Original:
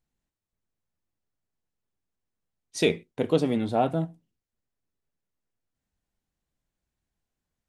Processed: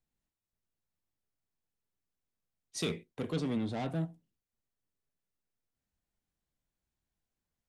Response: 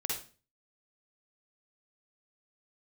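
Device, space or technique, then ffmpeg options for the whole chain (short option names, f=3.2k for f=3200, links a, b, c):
one-band saturation: -filter_complex "[0:a]acrossover=split=250|3100[a][b][c];[b]asoftclip=type=tanh:threshold=-32.5dB[d];[a][d][c]amix=inputs=3:normalize=0,asettb=1/sr,asplit=3[e][f][g];[e]atrim=end=3.324[h];[f]atrim=start=3.32:end=3.88,asetpts=PTS-STARTPTS,afade=t=in:d=0.004:c=qsin,afade=t=out:st=0.556:d=0.004:c=qsin,lowpass=7.6k[i];[g]atrim=start=3.876[j];[h][i]acrossfade=d=0.004:c1=hsin:c2=qsin[k];[k][j]acrossfade=d=0.004:c1=qsin:c2=hsin,volume=-4.5dB"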